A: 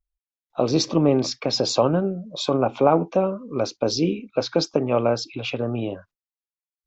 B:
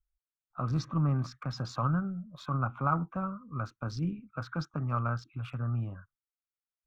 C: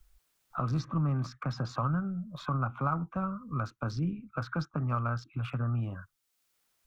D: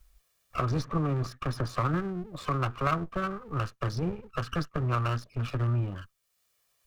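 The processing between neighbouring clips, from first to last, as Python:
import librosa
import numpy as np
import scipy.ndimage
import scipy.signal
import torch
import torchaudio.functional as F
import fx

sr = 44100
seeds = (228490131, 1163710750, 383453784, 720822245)

y1 = fx.wiener(x, sr, points=9)
y1 = fx.curve_eq(y1, sr, hz=(140.0, 430.0, 900.0, 1300.0, 2300.0, 3500.0), db=(0, -27, -14, 3, -17, -20))
y2 = fx.band_squash(y1, sr, depth_pct=70)
y3 = fx.lower_of_two(y2, sr, delay_ms=1.7)
y3 = y3 * librosa.db_to_amplitude(4.0)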